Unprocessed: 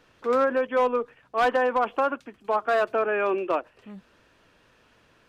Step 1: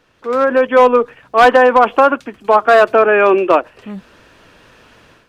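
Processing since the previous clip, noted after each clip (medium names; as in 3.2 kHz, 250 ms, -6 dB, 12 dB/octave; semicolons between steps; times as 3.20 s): level rider gain up to 12 dB; trim +2.5 dB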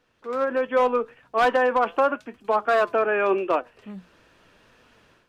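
flange 0.83 Hz, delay 3.9 ms, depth 2.4 ms, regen +85%; trim -6.5 dB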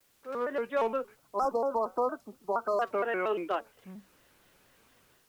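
spectral selection erased 1.15–2.81 s, 1.4–4.5 kHz; word length cut 10-bit, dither triangular; vibrato with a chosen wave square 4.3 Hz, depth 160 cents; trim -8.5 dB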